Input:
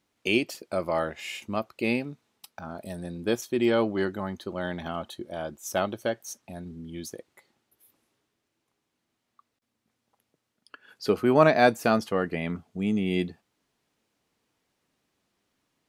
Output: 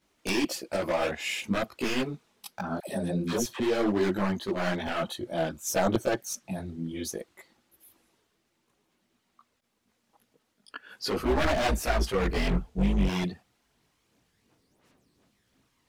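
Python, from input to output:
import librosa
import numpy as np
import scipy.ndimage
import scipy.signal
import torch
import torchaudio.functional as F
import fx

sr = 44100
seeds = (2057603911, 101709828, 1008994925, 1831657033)

p1 = fx.octave_divider(x, sr, octaves=2, level_db=-3.0, at=(11.17, 13.07))
p2 = fx.over_compress(p1, sr, threshold_db=-28.0, ratio=-0.5)
p3 = p1 + (p2 * librosa.db_to_amplitude(1.5))
p4 = 10.0 ** (-16.0 / 20.0) * (np.abs((p3 / 10.0 ** (-16.0 / 20.0) + 3.0) % 4.0 - 2.0) - 1.0)
p5 = fx.chorus_voices(p4, sr, voices=6, hz=1.4, base_ms=18, depth_ms=3.2, mix_pct=65)
p6 = fx.dispersion(p5, sr, late='lows', ms=87.0, hz=600.0, at=(2.8, 3.6))
y = p6 * librosa.db_to_amplitude(-1.5)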